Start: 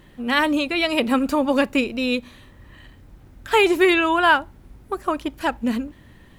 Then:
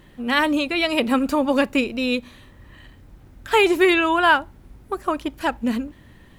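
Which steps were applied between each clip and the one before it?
nothing audible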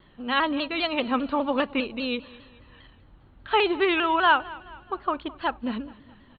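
rippled Chebyshev low-pass 4300 Hz, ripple 6 dB; feedback echo 0.213 s, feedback 49%, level -20.5 dB; shaped vibrato saw down 5 Hz, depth 100 cents; gain -1.5 dB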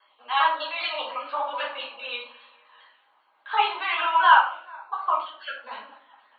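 random spectral dropouts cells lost 21%; ladder high-pass 730 Hz, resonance 35%; reverb RT60 0.50 s, pre-delay 7 ms, DRR -5 dB

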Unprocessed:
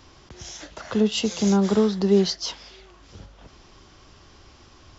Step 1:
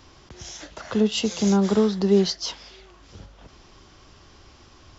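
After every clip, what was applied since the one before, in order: ending taper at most 450 dB/s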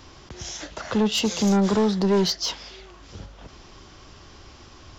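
soft clip -19.5 dBFS, distortion -10 dB; gain +4 dB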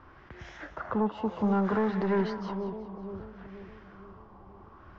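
split-band echo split 700 Hz, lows 0.478 s, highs 0.183 s, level -8.5 dB; LFO low-pass sine 0.62 Hz 930–1900 Hz; gain -7.5 dB

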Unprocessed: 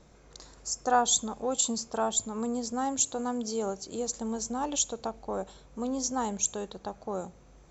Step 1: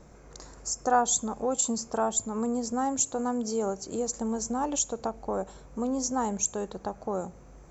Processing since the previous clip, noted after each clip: bell 3600 Hz -10 dB 0.97 oct; in parallel at -1.5 dB: compressor, threshold -36 dBFS, peak gain reduction 16 dB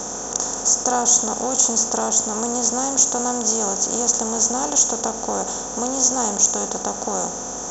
per-bin compression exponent 0.4; bell 6100 Hz +14.5 dB 0.36 oct; gain -1 dB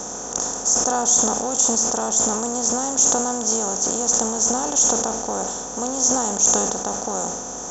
sustainer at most 37 dB/s; gain -2 dB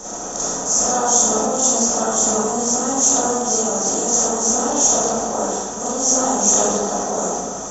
digital reverb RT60 0.92 s, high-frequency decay 0.35×, pre-delay 5 ms, DRR -9 dB; gain -5.5 dB

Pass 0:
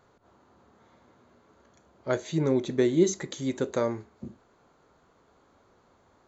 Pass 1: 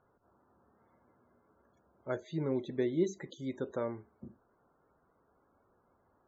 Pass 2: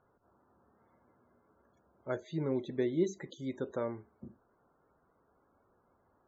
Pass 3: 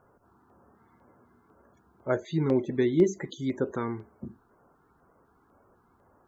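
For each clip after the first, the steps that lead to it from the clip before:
loudest bins only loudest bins 64; LPF 4200 Hz 12 dB/oct; gain -8.5 dB
nothing audible
LFO notch square 2 Hz 570–3800 Hz; gain +9 dB

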